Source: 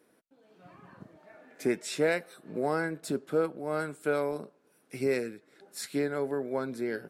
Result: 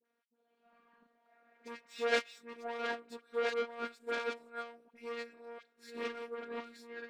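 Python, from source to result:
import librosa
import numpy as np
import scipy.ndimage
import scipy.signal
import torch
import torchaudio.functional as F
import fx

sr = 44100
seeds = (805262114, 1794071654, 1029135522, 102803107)

y = fx.reverse_delay(x, sr, ms=697, wet_db=-1.5)
y = (np.kron(scipy.signal.resample_poly(y, 1, 2), np.eye(2)[0]) * 2)[:len(y)]
y = fx.bandpass_edges(y, sr, low_hz=120.0, high_hz=3100.0)
y = fx.high_shelf(y, sr, hz=2100.0, db=-8.5)
y = 10.0 ** (-28.0 / 20.0) * np.tanh(y / 10.0 ** (-28.0 / 20.0))
y = fx.tilt_eq(y, sr, slope=4.5)
y = fx.robotise(y, sr, hz=235.0)
y = fx.dispersion(y, sr, late='highs', ms=58.0, hz=1200.0)
y = fx.upward_expand(y, sr, threshold_db=-44.0, expansion=2.5)
y = y * librosa.db_to_amplitude(7.5)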